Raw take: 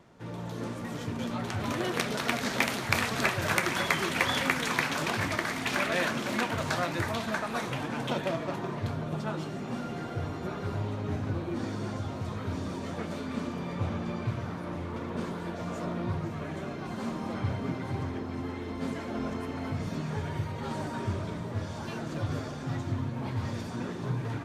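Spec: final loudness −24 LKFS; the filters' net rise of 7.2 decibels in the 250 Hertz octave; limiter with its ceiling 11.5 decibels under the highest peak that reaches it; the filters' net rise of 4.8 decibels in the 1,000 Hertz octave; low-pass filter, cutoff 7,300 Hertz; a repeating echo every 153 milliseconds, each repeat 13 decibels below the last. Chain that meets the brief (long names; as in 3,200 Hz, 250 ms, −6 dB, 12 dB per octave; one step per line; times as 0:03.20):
low-pass filter 7,300 Hz
parametric band 250 Hz +8.5 dB
parametric band 1,000 Hz +5.5 dB
brickwall limiter −17 dBFS
repeating echo 153 ms, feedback 22%, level −13 dB
level +5 dB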